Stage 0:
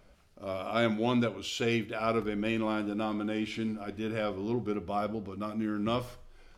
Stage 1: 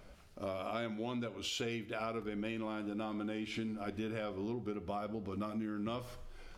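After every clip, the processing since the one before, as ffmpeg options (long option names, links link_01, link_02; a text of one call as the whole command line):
ffmpeg -i in.wav -af "acompressor=threshold=-39dB:ratio=12,volume=3.5dB" out.wav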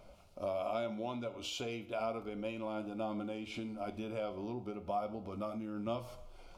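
ffmpeg -i in.wav -af "superequalizer=8b=2.24:9b=1.78:11b=0.316,flanger=delay=8.4:depth=8.3:regen=78:speed=0.33:shape=triangular,volume=2dB" out.wav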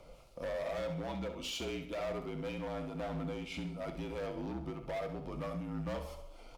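ffmpeg -i in.wav -filter_complex "[0:a]asoftclip=type=hard:threshold=-37.5dB,afreqshift=-47,asplit=2[link_01][link_02];[link_02]aecho=0:1:67|134|201|268:0.299|0.119|0.0478|0.0191[link_03];[link_01][link_03]amix=inputs=2:normalize=0,volume=2dB" out.wav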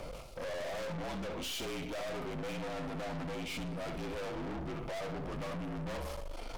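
ffmpeg -i in.wav -af "areverse,acompressor=mode=upward:threshold=-44dB:ratio=2.5,areverse,aeval=exprs='(tanh(316*val(0)+0.4)-tanh(0.4))/316':channel_layout=same,volume=12dB" out.wav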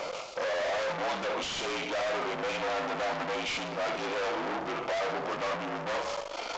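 ffmpeg -i in.wav -filter_complex "[0:a]aemphasis=mode=production:type=riaa,asplit=2[link_01][link_02];[link_02]highpass=frequency=720:poles=1,volume=19dB,asoftclip=type=tanh:threshold=-15.5dB[link_03];[link_01][link_03]amix=inputs=2:normalize=0,lowpass=frequency=1200:poles=1,volume=-6dB,aresample=16000,aresample=44100,volume=3.5dB" out.wav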